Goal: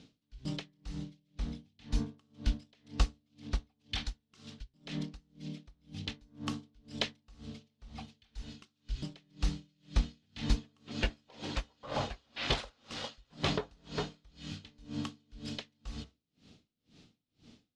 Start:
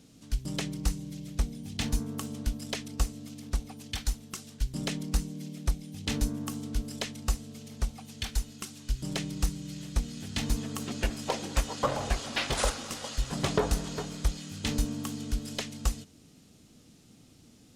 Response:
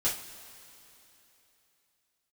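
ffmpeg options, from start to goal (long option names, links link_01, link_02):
-af "lowpass=frequency=3900:width_type=q:width=1.5,bandreject=frequency=66:width_type=h:width=4,bandreject=frequency=132:width_type=h:width=4,bandreject=frequency=198:width_type=h:width=4,bandreject=frequency=264:width_type=h:width=4,bandreject=frequency=330:width_type=h:width=4,bandreject=frequency=396:width_type=h:width=4,bandreject=frequency=462:width_type=h:width=4,bandreject=frequency=528:width_type=h:width=4,bandreject=frequency=594:width_type=h:width=4,bandreject=frequency=660:width_type=h:width=4,bandreject=frequency=726:width_type=h:width=4,bandreject=frequency=792:width_type=h:width=4,bandreject=frequency=858:width_type=h:width=4,bandreject=frequency=924:width_type=h:width=4,bandreject=frequency=990:width_type=h:width=4,bandreject=frequency=1056:width_type=h:width=4,bandreject=frequency=1122:width_type=h:width=4,bandreject=frequency=1188:width_type=h:width=4,bandreject=frequency=1254:width_type=h:width=4,bandreject=frequency=1320:width_type=h:width=4,bandreject=frequency=1386:width_type=h:width=4,bandreject=frequency=1452:width_type=h:width=4,bandreject=frequency=1518:width_type=h:width=4,bandreject=frequency=1584:width_type=h:width=4,bandreject=frequency=1650:width_type=h:width=4,bandreject=frequency=1716:width_type=h:width=4,bandreject=frequency=1782:width_type=h:width=4,bandreject=frequency=1848:width_type=h:width=4,bandreject=frequency=1914:width_type=h:width=4,bandreject=frequency=1980:width_type=h:width=4,bandreject=frequency=2046:width_type=h:width=4,aeval=exprs='val(0)*pow(10,-35*(0.5-0.5*cos(2*PI*2*n/s))/20)':channel_layout=same,volume=1dB"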